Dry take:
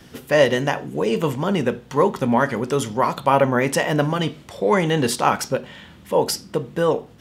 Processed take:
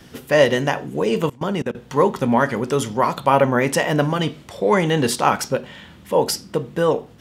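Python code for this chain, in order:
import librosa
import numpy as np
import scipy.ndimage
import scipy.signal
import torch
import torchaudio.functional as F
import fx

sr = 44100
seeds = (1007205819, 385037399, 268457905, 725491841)

y = fx.level_steps(x, sr, step_db=23, at=(1.26, 1.75))
y = y * 10.0 ** (1.0 / 20.0)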